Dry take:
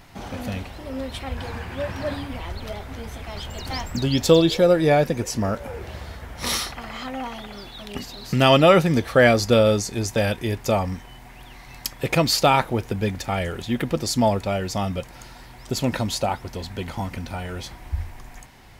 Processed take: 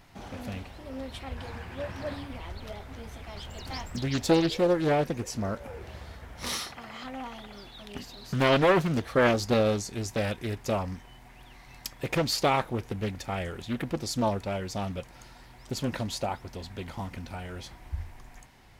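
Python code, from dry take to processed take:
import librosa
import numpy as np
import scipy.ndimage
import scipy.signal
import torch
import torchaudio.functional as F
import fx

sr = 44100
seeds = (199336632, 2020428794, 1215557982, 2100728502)

y = fx.highpass(x, sr, hz=92.0, slope=12, at=(6.51, 7.04))
y = fx.doppler_dist(y, sr, depth_ms=0.54)
y = F.gain(torch.from_numpy(y), -7.5).numpy()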